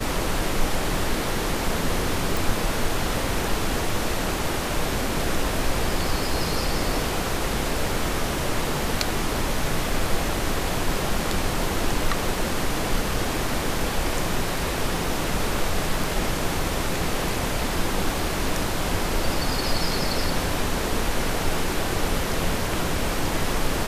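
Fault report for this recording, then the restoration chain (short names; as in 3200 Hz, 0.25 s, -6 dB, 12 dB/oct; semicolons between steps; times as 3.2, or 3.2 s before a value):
2.37 pop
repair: de-click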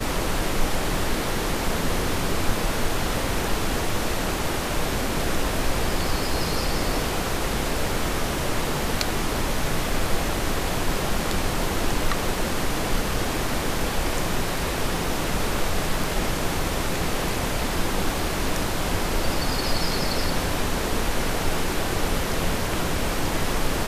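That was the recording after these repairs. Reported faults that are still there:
none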